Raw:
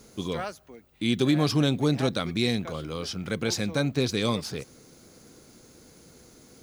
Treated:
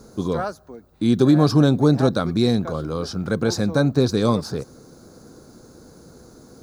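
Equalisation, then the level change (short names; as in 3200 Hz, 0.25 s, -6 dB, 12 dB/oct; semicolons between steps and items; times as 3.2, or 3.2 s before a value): band shelf 2500 Hz -12 dB 1 oct; high shelf 3200 Hz -9 dB; +8.0 dB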